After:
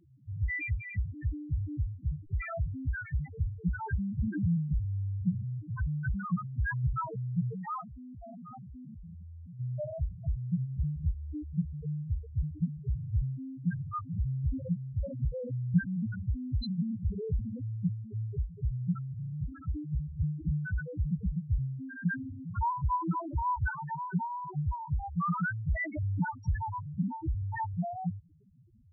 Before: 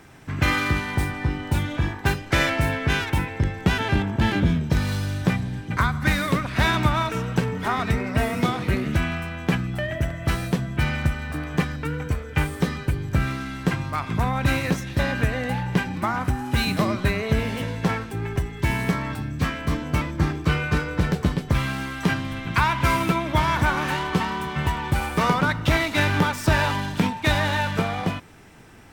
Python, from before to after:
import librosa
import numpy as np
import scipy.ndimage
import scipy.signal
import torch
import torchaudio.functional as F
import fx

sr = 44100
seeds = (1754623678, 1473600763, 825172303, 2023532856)

y = fx.low_shelf(x, sr, hz=200.0, db=8.5, at=(15.73, 16.22))
y = fx.spec_topn(y, sr, count=1)
y = fx.level_steps(y, sr, step_db=23, at=(7.8, 9.59), fade=0.02)